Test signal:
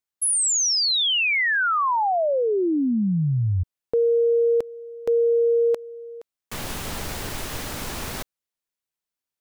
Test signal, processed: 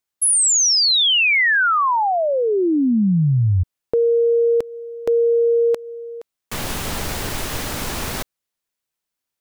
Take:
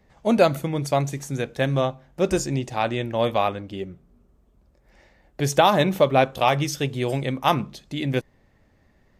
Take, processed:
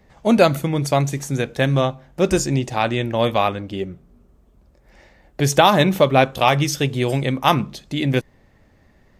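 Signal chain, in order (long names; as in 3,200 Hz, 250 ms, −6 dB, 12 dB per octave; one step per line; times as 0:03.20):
dynamic equaliser 610 Hz, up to −3 dB, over −28 dBFS, Q 0.89
level +5.5 dB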